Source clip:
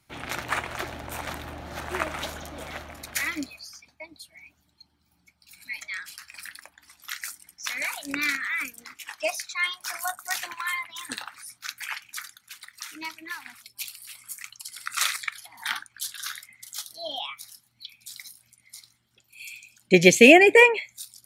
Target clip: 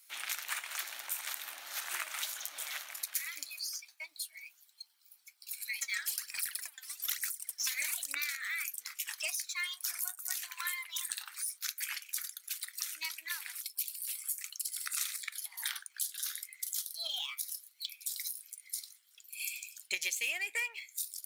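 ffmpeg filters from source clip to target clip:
ffmpeg -i in.wav -filter_complex "[0:a]aeval=exprs='if(lt(val(0),0),0.708*val(0),val(0))':channel_layout=same,highpass=1400,aemphasis=mode=production:type=75kf,acompressor=threshold=-32dB:ratio=6,asplit=3[link_01][link_02][link_03];[link_01]afade=type=out:start_time=5.81:duration=0.02[link_04];[link_02]aphaser=in_gain=1:out_gain=1:delay=3.9:decay=0.67:speed=1.1:type=sinusoidal,afade=type=in:start_time=5.81:duration=0.02,afade=type=out:start_time=8.17:duration=0.02[link_05];[link_03]afade=type=in:start_time=8.17:duration=0.02[link_06];[link_04][link_05][link_06]amix=inputs=3:normalize=0,volume=-2dB" out.wav

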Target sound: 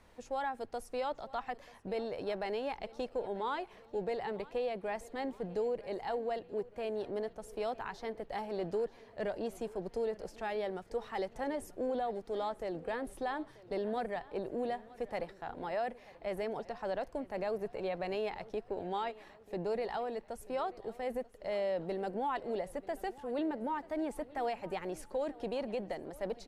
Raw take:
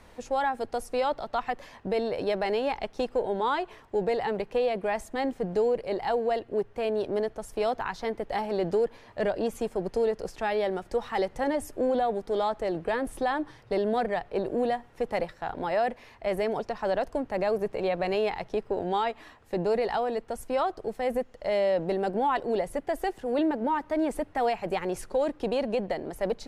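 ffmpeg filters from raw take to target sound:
ffmpeg -i in.wav -af "aecho=1:1:937|1874|2811|3748:0.1|0.053|0.0281|0.0149,volume=-9dB" out.wav

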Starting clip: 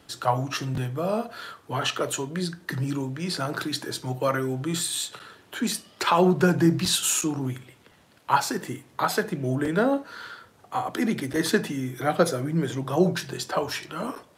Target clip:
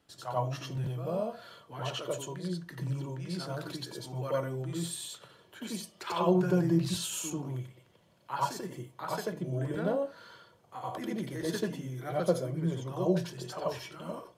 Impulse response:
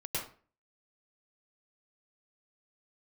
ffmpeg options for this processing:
-filter_complex "[1:a]atrim=start_sample=2205,afade=type=out:start_time=0.15:duration=0.01,atrim=end_sample=7056,asetrate=48510,aresample=44100[link_01];[0:a][link_01]afir=irnorm=-1:irlink=0,volume=-9dB"

